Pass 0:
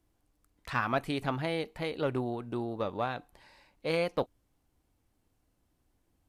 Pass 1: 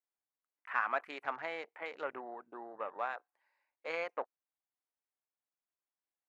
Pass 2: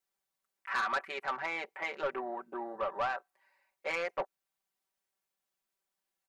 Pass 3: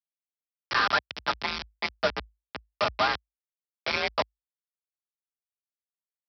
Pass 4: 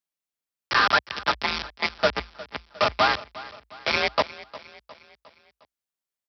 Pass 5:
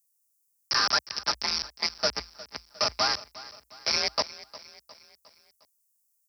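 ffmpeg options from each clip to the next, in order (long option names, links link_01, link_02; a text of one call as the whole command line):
ffmpeg -i in.wav -af "highpass=730,afwtdn=0.00398,highshelf=frequency=2700:width_type=q:width=1.5:gain=-8.5,volume=-2.5dB" out.wav
ffmpeg -i in.wav -filter_complex "[0:a]aecho=1:1:5.2:0.95,asplit=2[link_01][link_02];[link_02]alimiter=limit=-23.5dB:level=0:latency=1:release=470,volume=-2.5dB[link_03];[link_01][link_03]amix=inputs=2:normalize=0,asoftclip=type=tanh:threshold=-25.5dB" out.wav
ffmpeg -i in.wav -af "aresample=11025,acrusher=bits=4:mix=0:aa=0.000001,aresample=44100,afreqshift=53,volume=5.5dB" out.wav
ffmpeg -i in.wav -af "aecho=1:1:357|714|1071|1428:0.126|0.0629|0.0315|0.0157,volume=4.5dB" out.wav
ffmpeg -i in.wav -af "aexciter=amount=14.9:drive=6:freq=5200,volume=-8dB" out.wav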